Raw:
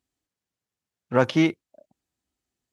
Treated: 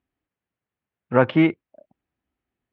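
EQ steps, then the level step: LPF 2700 Hz 24 dB/oct; +3.0 dB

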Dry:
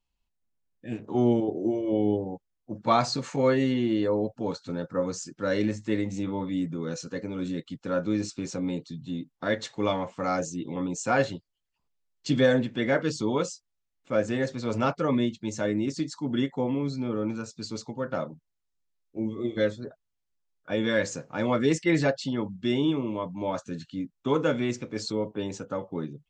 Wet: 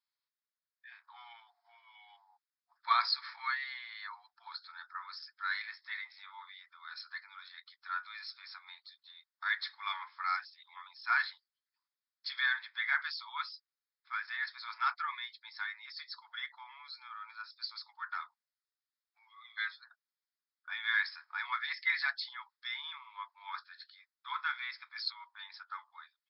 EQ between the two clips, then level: dynamic EQ 2400 Hz, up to +4 dB, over -45 dBFS, Q 1.7; brick-wall FIR band-pass 700–5400 Hz; fixed phaser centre 2800 Hz, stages 6; 0.0 dB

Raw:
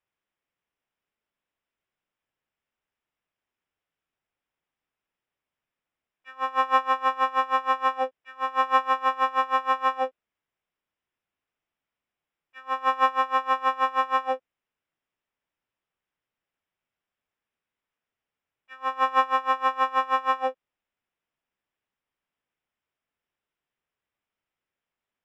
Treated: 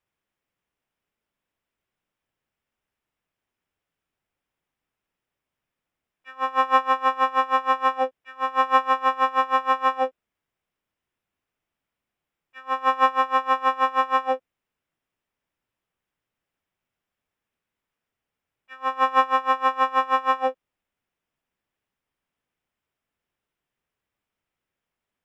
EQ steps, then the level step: low shelf 340 Hz +5.5 dB; +2.0 dB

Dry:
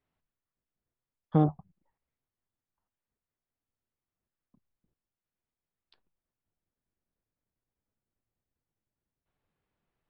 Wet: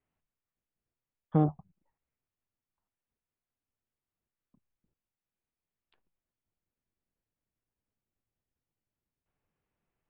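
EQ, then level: Chebyshev low-pass 2800 Hz, order 3; -1.5 dB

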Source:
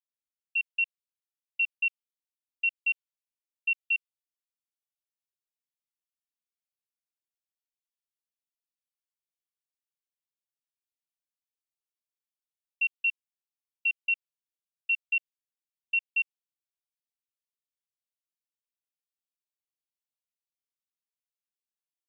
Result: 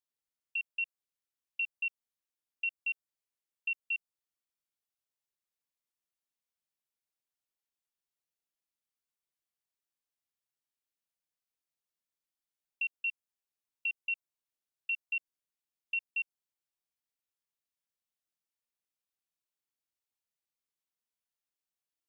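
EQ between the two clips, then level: dynamic EQ 2800 Hz, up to -7 dB, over -39 dBFS, Q 1.1; 0.0 dB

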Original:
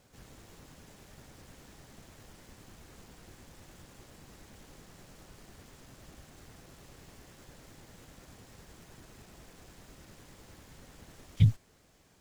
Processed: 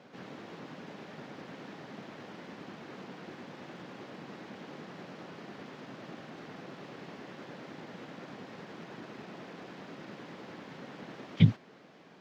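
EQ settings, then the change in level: HPF 170 Hz 24 dB/oct; air absorption 260 m; +12.0 dB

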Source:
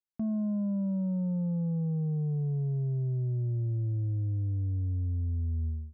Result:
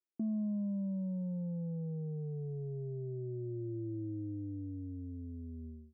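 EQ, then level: band-pass 330 Hz, Q 3.7; +6.5 dB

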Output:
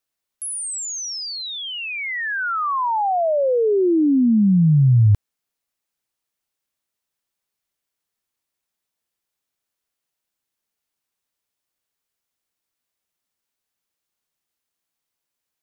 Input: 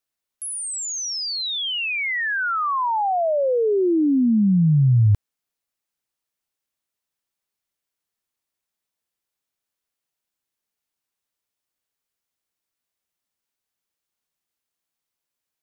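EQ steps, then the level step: dynamic EQ 3200 Hz, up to -6 dB, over -39 dBFS, Q 0.73; +2.0 dB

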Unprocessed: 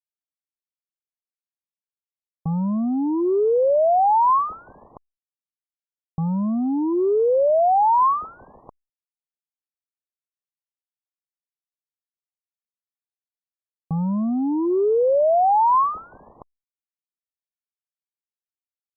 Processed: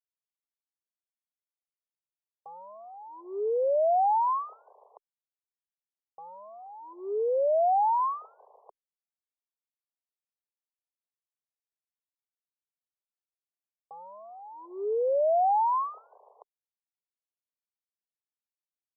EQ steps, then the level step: elliptic high-pass 410 Hz, stop band 40 dB; LPF 1300 Hz; fixed phaser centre 690 Hz, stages 4; -5.5 dB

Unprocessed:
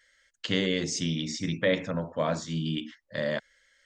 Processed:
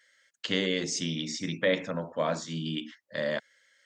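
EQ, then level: HPF 130 Hz 12 dB/oct; low shelf 180 Hz -5.5 dB; 0.0 dB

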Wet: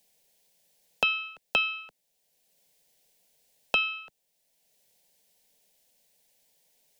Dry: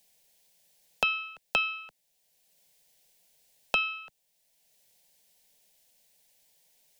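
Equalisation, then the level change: dynamic EQ 3400 Hz, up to +6 dB, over -43 dBFS, Q 1.5; bell 350 Hz +5.5 dB 1.7 oct; -2.0 dB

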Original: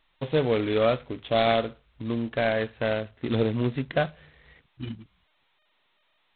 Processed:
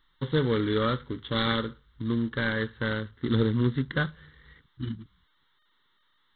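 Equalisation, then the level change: fixed phaser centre 2500 Hz, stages 6; +3.0 dB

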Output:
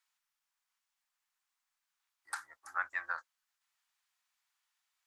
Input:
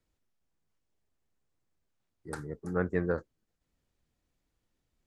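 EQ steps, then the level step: inverse Chebyshev high-pass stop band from 470 Hz, stop band 40 dB; +4.0 dB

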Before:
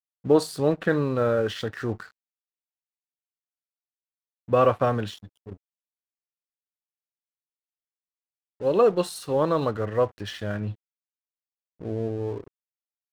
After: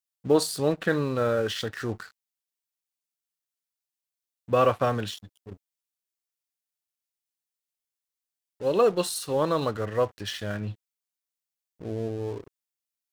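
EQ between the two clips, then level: high shelf 2700 Hz +9.5 dB; -2.5 dB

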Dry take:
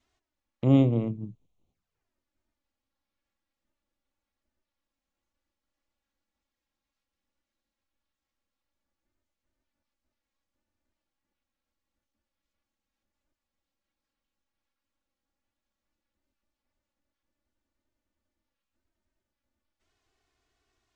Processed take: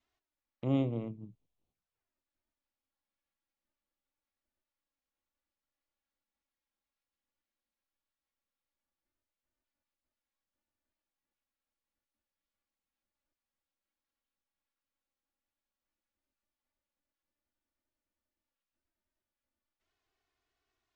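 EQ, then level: air absorption 70 m; low shelf 390 Hz -6 dB; -5.5 dB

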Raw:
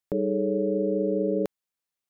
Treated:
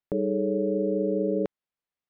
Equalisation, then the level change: air absorption 230 m; 0.0 dB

